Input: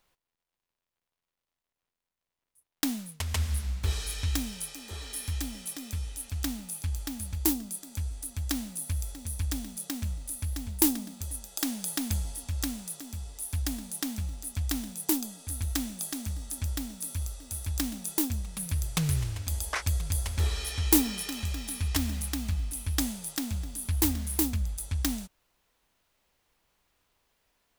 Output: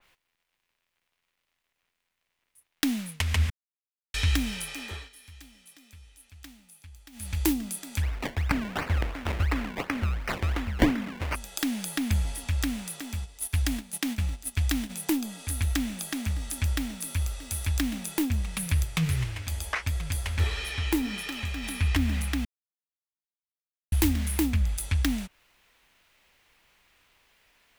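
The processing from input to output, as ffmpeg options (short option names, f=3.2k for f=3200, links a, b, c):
-filter_complex "[0:a]asplit=3[a][b][c];[a]afade=t=out:st=8.01:d=0.02[d];[b]acrusher=samples=24:mix=1:aa=0.000001:lfo=1:lforange=24:lforate=2.8,afade=t=in:st=8.01:d=0.02,afade=t=out:st=11.34:d=0.02[e];[c]afade=t=in:st=11.34:d=0.02[f];[d][e][f]amix=inputs=3:normalize=0,asplit=3[g][h][i];[g]afade=t=out:st=13.19:d=0.02[j];[h]agate=range=-11dB:threshold=-38dB:ratio=16:release=100:detection=peak,afade=t=in:st=13.19:d=0.02,afade=t=out:st=14.89:d=0.02[k];[i]afade=t=in:st=14.89:d=0.02[l];[j][k][l]amix=inputs=3:normalize=0,asplit=3[m][n][o];[m]afade=t=out:st=18.83:d=0.02[p];[n]flanger=delay=5.2:depth=7.8:regen=57:speed=1.5:shape=triangular,afade=t=in:st=18.83:d=0.02,afade=t=out:st=21.62:d=0.02[q];[o]afade=t=in:st=21.62:d=0.02[r];[p][q][r]amix=inputs=3:normalize=0,asplit=7[s][t][u][v][w][x][y];[s]atrim=end=3.5,asetpts=PTS-STARTPTS,afade=t=out:st=3.496:d=0.004:c=hsin[z];[t]atrim=start=3.5:end=4.14,asetpts=PTS-STARTPTS,volume=0[aa];[u]atrim=start=4.14:end=5.1,asetpts=PTS-STARTPTS,afade=t=in:d=0.004:c=hsin,afade=t=out:st=0.69:d=0.27:silence=0.0794328[ab];[v]atrim=start=5.1:end=7.12,asetpts=PTS-STARTPTS,volume=-22dB[ac];[w]atrim=start=7.12:end=22.45,asetpts=PTS-STARTPTS,afade=t=in:d=0.27:silence=0.0794328,afade=t=out:st=15.326:d=0.004:c=hsin[ad];[x]atrim=start=22.45:end=23.92,asetpts=PTS-STARTPTS,volume=0[ae];[y]atrim=start=23.92,asetpts=PTS-STARTPTS,afade=t=in:d=0.004:c=hsin[af];[z][aa][ab][ac][ad][ae][af]concat=n=7:v=0:a=1,equalizer=f=2.3k:w=0.88:g=9.5,acrossover=split=370[ag][ah];[ah]acompressor=threshold=-32dB:ratio=4[ai];[ag][ai]amix=inputs=2:normalize=0,adynamicequalizer=threshold=0.00282:dfrequency=3100:dqfactor=0.7:tfrequency=3100:tqfactor=0.7:attack=5:release=100:ratio=0.375:range=4:mode=cutabove:tftype=highshelf,volume=5dB"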